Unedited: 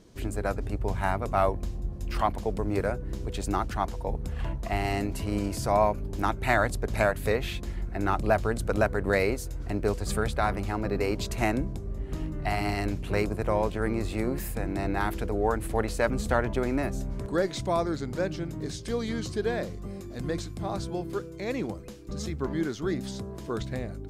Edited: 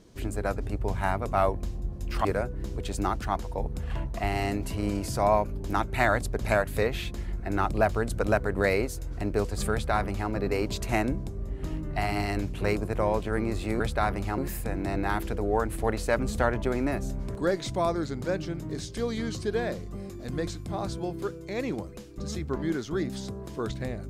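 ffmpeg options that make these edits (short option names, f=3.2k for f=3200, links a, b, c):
-filter_complex "[0:a]asplit=4[a][b][c][d];[a]atrim=end=2.252[e];[b]atrim=start=2.738:end=14.292[f];[c]atrim=start=10.208:end=10.792[g];[d]atrim=start=14.288[h];[e][f]acrossfade=d=0.004:c1=hsin:c2=hsin[i];[i][g]acrossfade=d=0.004:c1=hsin:c2=hsin[j];[j][h]acrossfade=d=0.004:c1=hsin:c2=hsin"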